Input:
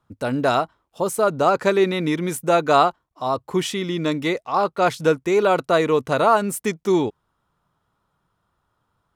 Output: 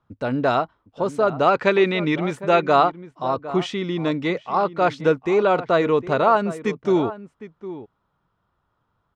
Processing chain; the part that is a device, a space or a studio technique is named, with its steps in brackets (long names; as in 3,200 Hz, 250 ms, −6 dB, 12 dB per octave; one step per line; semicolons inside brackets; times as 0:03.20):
shout across a valley (high-frequency loss of the air 150 metres; slap from a distant wall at 130 metres, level −14 dB)
0:01.29–0:02.66: dynamic equaliser 2,600 Hz, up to +7 dB, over −37 dBFS, Q 1